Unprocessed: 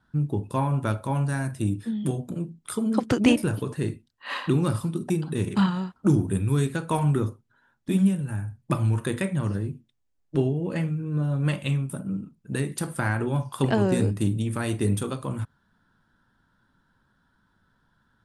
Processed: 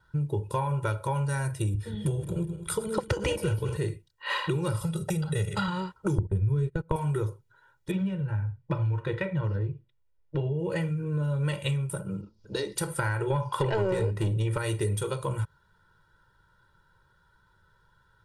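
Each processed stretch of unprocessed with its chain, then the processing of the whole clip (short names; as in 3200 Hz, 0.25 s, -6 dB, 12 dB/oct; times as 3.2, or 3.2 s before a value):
1.74–3.77 regenerating reverse delay 0.103 s, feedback 61%, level -12 dB + bell 61 Hz +12.5 dB 2.2 oct
4.81–5.68 comb 1.5 ms, depth 72% + three-band squash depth 40%
6.18–6.96 gate -29 dBFS, range -30 dB + tilt -4 dB/oct + upward compressor, threshold -14 dBFS
7.91–10.59 air absorption 260 m + notch 390 Hz
12.21–12.76 EQ curve 110 Hz 0 dB, 150 Hz -27 dB, 210 Hz +6 dB, 400 Hz -2 dB, 620 Hz +1 dB, 2400 Hz -7 dB, 5100 Hz +13 dB, 8200 Hz -15 dB + upward compressor, threshold -46 dBFS
13.3–14.58 low shelf 180 Hz +9.5 dB + overdrive pedal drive 20 dB, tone 1400 Hz, clips at -6.5 dBFS
whole clip: bell 270 Hz -8.5 dB 0.33 oct; comb 2.1 ms, depth 95%; compressor 5:1, threshold -25 dBFS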